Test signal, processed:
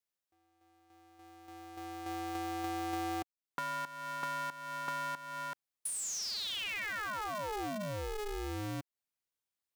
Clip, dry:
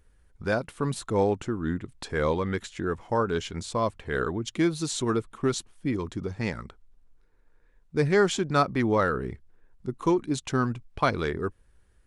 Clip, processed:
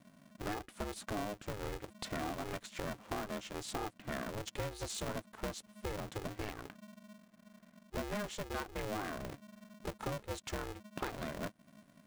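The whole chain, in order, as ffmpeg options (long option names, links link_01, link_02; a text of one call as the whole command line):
ffmpeg -i in.wav -af "adynamicequalizer=threshold=0.0112:dfrequency=520:dqfactor=3.2:tfrequency=520:tqfactor=3.2:attack=5:release=100:ratio=0.375:range=2.5:mode=boostabove:tftype=bell,acompressor=threshold=-36dB:ratio=6,aeval=exprs='val(0)*sgn(sin(2*PI*210*n/s))':channel_layout=same,volume=-2dB" out.wav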